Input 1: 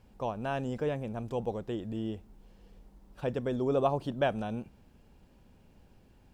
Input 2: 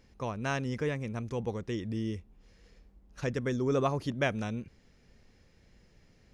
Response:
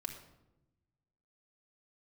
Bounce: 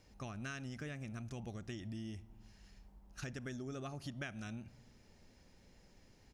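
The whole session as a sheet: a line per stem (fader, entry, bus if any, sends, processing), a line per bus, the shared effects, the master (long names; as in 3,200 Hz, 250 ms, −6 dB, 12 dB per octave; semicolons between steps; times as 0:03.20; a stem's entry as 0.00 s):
−3.5 dB, 0.00 s, send −12 dB, low-pass filter 1,100 Hz 6 dB per octave; low-shelf EQ 290 Hz −9 dB
−6.5 dB, 0.9 ms, send −12.5 dB, high-shelf EQ 4,100 Hz +9.5 dB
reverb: on, RT60 0.95 s, pre-delay 3 ms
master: downward compressor 6 to 1, threshold −41 dBFS, peak gain reduction 12.5 dB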